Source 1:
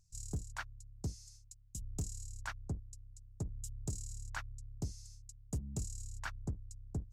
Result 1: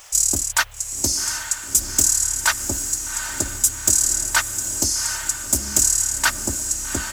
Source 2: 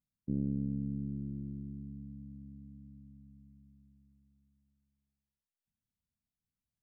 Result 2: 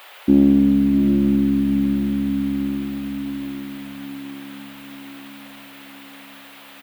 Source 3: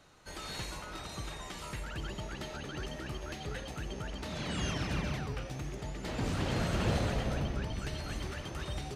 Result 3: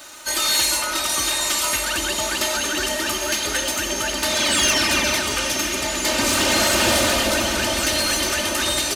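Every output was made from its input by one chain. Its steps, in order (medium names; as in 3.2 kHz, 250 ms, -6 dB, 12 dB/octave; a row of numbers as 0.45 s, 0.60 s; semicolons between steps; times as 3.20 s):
RIAA curve recording; comb 3.3 ms, depth 89%; on a send: echo that smears into a reverb 801 ms, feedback 56%, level -9 dB; on the sum: saturation -26.5 dBFS; band noise 480–3500 Hz -71 dBFS; normalise loudness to -19 LUFS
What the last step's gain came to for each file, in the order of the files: +20.5 dB, +26.5 dB, +15.5 dB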